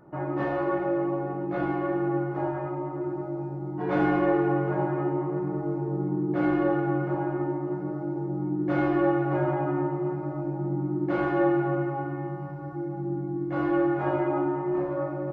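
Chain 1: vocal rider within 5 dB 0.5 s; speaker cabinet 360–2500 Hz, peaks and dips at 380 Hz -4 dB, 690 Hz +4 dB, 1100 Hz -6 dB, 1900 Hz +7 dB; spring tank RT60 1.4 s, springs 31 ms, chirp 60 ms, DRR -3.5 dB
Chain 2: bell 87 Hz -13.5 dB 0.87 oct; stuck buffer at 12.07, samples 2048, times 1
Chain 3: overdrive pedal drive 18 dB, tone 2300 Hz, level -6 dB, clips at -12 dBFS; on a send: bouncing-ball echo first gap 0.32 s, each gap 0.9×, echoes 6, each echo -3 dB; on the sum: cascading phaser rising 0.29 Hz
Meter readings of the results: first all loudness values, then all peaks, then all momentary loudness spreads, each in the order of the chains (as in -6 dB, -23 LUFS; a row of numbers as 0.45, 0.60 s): -27.5, -28.5, -22.5 LUFS; -12.0, -12.5, -8.5 dBFS; 9, 9, 6 LU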